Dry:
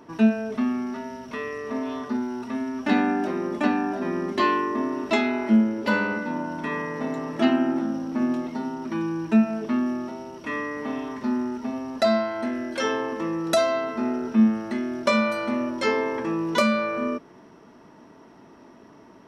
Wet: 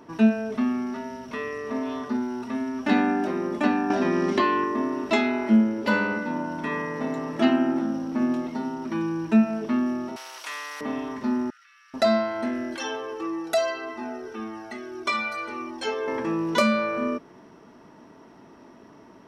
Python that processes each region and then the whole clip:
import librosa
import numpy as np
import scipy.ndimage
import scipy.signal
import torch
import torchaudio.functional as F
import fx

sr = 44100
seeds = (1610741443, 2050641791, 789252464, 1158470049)

y = fx.chain(x, sr, fx.air_absorb(metres=62.0),
    fx.band_squash(depth_pct=100), at=(3.9, 4.64))
y = fx.chain(y, sr, fx.highpass(hz=930.0, slope=24),
    fx.spectral_comp(ratio=2.0), at=(10.16, 10.81))
y = fx.chain(y, sr, fx.steep_highpass(hz=1300.0, slope=72),
    fx.high_shelf(hz=5600.0, db=-9.5),
    fx.level_steps(step_db=14), at=(11.5, 11.94))
y = fx.chain(y, sr, fx.low_shelf(hz=180.0, db=-10.5),
    fx.comb(ms=2.6, depth=0.73),
    fx.comb_cascade(direction='falling', hz=1.7), at=(12.76, 16.08))